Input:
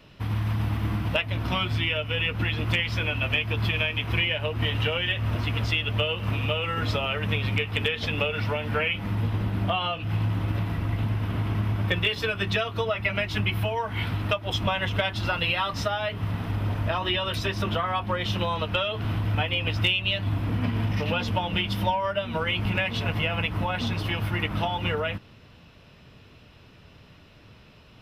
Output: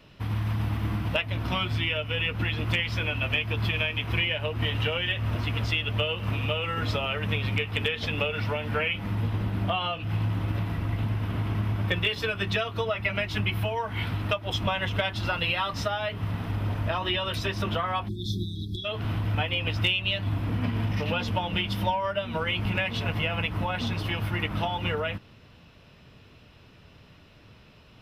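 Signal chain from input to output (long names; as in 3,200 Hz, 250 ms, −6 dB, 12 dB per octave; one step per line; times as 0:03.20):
time-frequency box erased 0:18.08–0:18.85, 420–3,300 Hz
level −1.5 dB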